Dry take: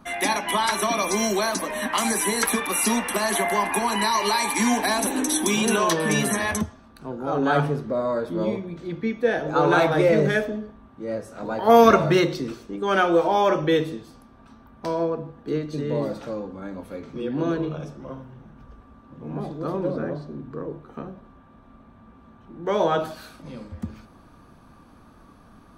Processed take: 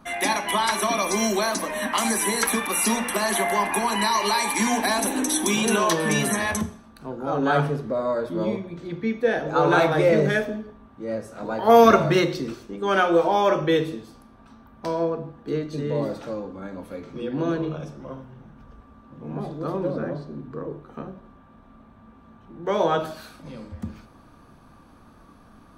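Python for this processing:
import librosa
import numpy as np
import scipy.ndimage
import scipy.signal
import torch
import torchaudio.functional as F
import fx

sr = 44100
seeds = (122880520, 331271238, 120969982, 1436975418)

y = fx.hum_notches(x, sr, base_hz=60, count=7)
y = fx.rev_schroeder(y, sr, rt60_s=0.51, comb_ms=28, drr_db=15.5)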